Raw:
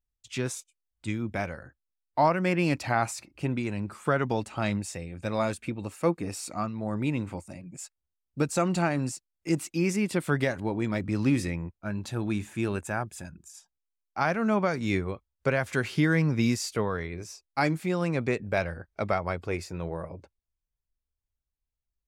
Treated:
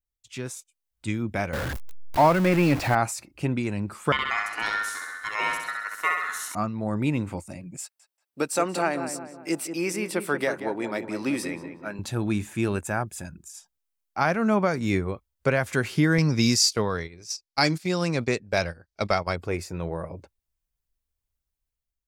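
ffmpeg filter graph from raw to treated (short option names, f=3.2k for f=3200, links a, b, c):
-filter_complex "[0:a]asettb=1/sr,asplit=3[a][b][c];[a]atrim=end=1.534[d];[b]atrim=start=1.53:end=2.95,asetpts=PTS-STARTPTS,afade=t=in:d=0.004:c=qsin,afade=t=out:st=1.416:d=0.004:c=qsin,aeval=exprs='val(0)+0.5*0.0422*sgn(val(0))':c=same,acrossover=split=4500[e][f];[f]acompressor=threshold=-46dB:ratio=4:attack=1:release=60[g];[e][g]amix=inputs=2:normalize=0[h];[c]atrim=start=2.946[i];[d][h]acrossfade=d=0.004:c1=hsin:c2=qsin[j];[j][i]acrossfade=d=0.004:c1=qsin:c2=hsin,asettb=1/sr,asplit=3[k][l][m];[k]atrim=end=4.124[n];[l]atrim=start=4.12:end=6.55,asetpts=PTS-STARTPTS,afade=t=in:d=0.004:c=qsin,afade=t=out:st=2.426:d=0.004:c=qsin,aeval=exprs='val(0)*sin(2*PI*1600*n/s)':c=same,lowshelf=f=320:g=-9.5,aecho=1:1:66|132|198|264|330|396|462|528:0.631|0.366|0.212|0.123|0.0714|0.0414|0.024|0.0139,atrim=end_sample=107163[o];[m]atrim=start=6.546[p];[n][o]acrossfade=d=0.004:c1=hsin:c2=qsin[q];[q][p]acrossfade=d=0.004:c1=qsin:c2=hsin,asettb=1/sr,asplit=3[r][s][t];[r]atrim=end=7.814[u];[s]atrim=start=7.81:end=11.99,asetpts=PTS-STARTPTS,afade=t=in:d=0.004:c=qsin,afade=t=out:st=4.176:d=0.004:c=qsin,highpass=360,bandreject=f=6.8k:w=7.6,asplit=2[v][w];[w]adelay=184,lowpass=f=1.6k:p=1,volume=-8dB,asplit=2[x][y];[y]adelay=184,lowpass=f=1.6k:p=1,volume=0.48,asplit=2[z][aa];[aa]adelay=184,lowpass=f=1.6k:p=1,volume=0.48,asplit=2[ab][ac];[ac]adelay=184,lowpass=f=1.6k:p=1,volume=0.48,asplit=2[ad][ae];[ae]adelay=184,lowpass=f=1.6k:p=1,volume=0.48,asplit=2[af][ag];[ag]adelay=184,lowpass=f=1.6k:p=1,volume=0.48[ah];[v][x][z][ab][ad][af][ah]amix=inputs=7:normalize=0,atrim=end_sample=184338[ai];[t]atrim=start=11.986[aj];[u][ai]acrossfade=d=0.004:c1=hsin:c2=qsin[ak];[ak][aj]acrossfade=d=0.004:c1=qsin:c2=hsin,asettb=1/sr,asplit=3[al][am][an];[al]atrim=end=16.184[ao];[am]atrim=start=16.18:end=19.36,asetpts=PTS-STARTPTS,afade=t=in:d=0.004:c=qsin,afade=t=out:st=3.176:d=0.004:c=qsin,equalizer=f=4.9k:t=o:w=1.2:g=14,agate=range=-12dB:threshold=-34dB:ratio=16:release=100:detection=peak[ap];[an]atrim=start=19.356[aq];[ao][ap]acrossfade=d=0.004:c1=hsin:c2=qsin[ar];[ar][aq]acrossfade=d=0.004:c1=qsin:c2=hsin,adynamicequalizer=threshold=0.00501:dfrequency=3200:dqfactor=0.92:tfrequency=3200:tqfactor=0.92:attack=5:release=100:ratio=0.375:range=2:mode=cutabove:tftype=bell,dynaudnorm=f=540:g=3:m=8dB,highshelf=f=9.9k:g=6,volume=-4.5dB"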